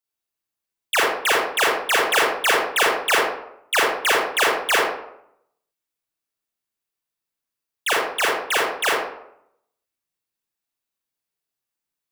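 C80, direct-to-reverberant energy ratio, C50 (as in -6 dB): 4.5 dB, -4.5 dB, 0.0 dB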